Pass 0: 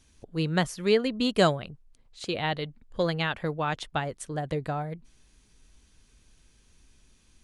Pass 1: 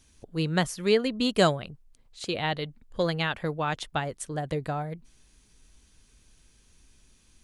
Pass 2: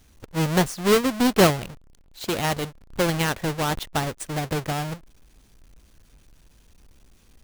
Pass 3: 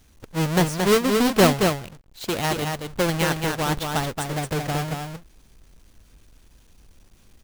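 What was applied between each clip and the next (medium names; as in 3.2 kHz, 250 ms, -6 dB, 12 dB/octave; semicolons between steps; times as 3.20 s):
treble shelf 6.9 kHz +5 dB
square wave that keeps the level
delay 225 ms -4.5 dB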